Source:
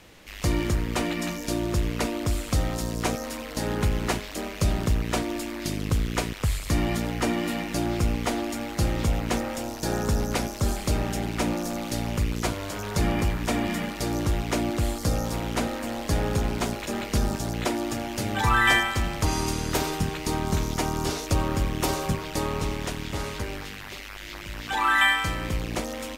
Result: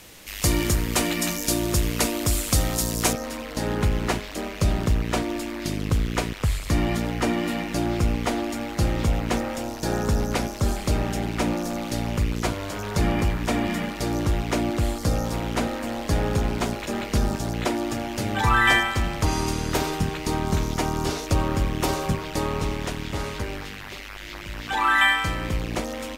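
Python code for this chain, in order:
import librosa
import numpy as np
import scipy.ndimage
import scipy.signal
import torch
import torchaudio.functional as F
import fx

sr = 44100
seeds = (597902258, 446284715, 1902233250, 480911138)

y = fx.peak_eq(x, sr, hz=13000.0, db=fx.steps((0.0, 12.0), (3.13, -3.5)), octaves=2.0)
y = y * 10.0 ** (2.0 / 20.0)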